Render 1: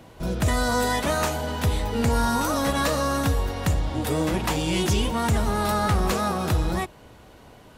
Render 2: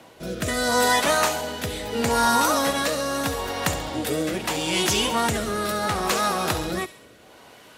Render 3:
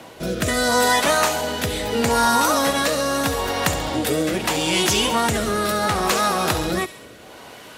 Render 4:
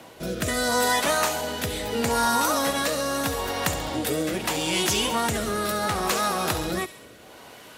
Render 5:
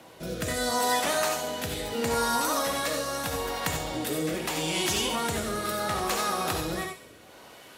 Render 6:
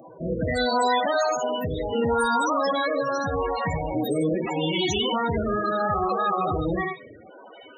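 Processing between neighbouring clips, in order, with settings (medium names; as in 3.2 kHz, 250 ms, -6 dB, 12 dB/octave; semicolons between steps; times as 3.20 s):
rotary cabinet horn 0.75 Hz; high-pass 540 Hz 6 dB/octave; feedback echo behind a high-pass 68 ms, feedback 54%, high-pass 2.4 kHz, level -11 dB; trim +7 dB
compression 1.5:1, threshold -31 dBFS, peak gain reduction 5.5 dB; trim +7.5 dB
treble shelf 11 kHz +5 dB; trim -5 dB
reverberation, pre-delay 3 ms, DRR 4 dB; trim -5 dB
loudest bins only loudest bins 16; in parallel at +3 dB: peak limiter -24.5 dBFS, peak gain reduction 8 dB; on the sum: treble shelf 7.7 kHz +11 dB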